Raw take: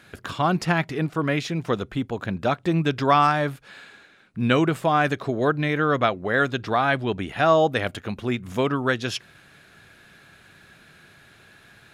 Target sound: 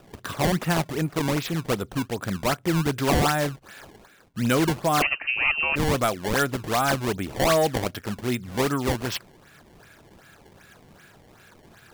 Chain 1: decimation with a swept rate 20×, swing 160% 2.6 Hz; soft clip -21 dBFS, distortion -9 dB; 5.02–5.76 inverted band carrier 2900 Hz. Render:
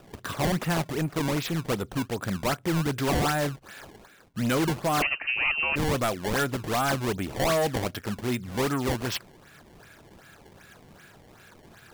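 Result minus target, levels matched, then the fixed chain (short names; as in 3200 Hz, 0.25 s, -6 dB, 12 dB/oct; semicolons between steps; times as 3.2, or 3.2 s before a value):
soft clip: distortion +7 dB
decimation with a swept rate 20×, swing 160% 2.6 Hz; soft clip -14 dBFS, distortion -16 dB; 5.02–5.76 inverted band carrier 2900 Hz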